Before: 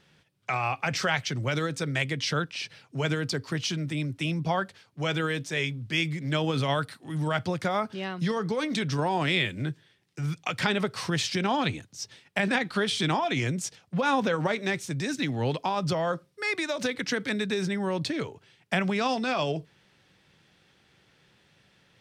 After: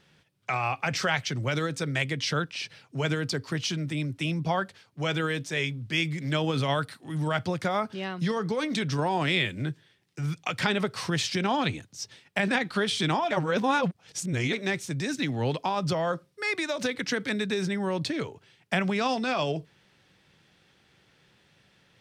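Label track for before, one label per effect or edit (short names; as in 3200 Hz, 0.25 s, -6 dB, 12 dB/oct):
6.180000	7.010000	mismatched tape noise reduction encoder only
13.310000	14.530000	reverse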